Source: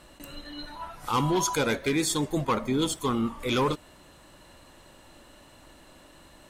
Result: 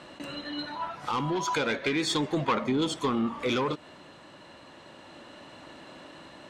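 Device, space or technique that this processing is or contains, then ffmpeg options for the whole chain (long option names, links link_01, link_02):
AM radio: -filter_complex "[0:a]highpass=140,lowpass=4500,acompressor=threshold=-29dB:ratio=5,asoftclip=type=tanh:threshold=-25.5dB,tremolo=f=0.34:d=0.28,asettb=1/sr,asplit=3[link_01][link_02][link_03];[link_01]atrim=end=1.474[link_04];[link_02]atrim=start=1.47:end=2.64,asetpts=PTS-STARTPTS,afade=type=in:duration=0.004:curve=qsin,afade=type=out:start_time=1.166:duration=0.004:curve=qsin,equalizer=frequency=2400:width_type=o:width=2.3:gain=4.5[link_05];[link_03]atrim=start=2.636[link_06];[link_04][link_05]acrossfade=duration=0.004:curve1=hsin:curve2=qsin[link_07];[link_07][link_06]acrossfade=duration=0.004:curve1=qsin:curve2=hsin,volume=7dB"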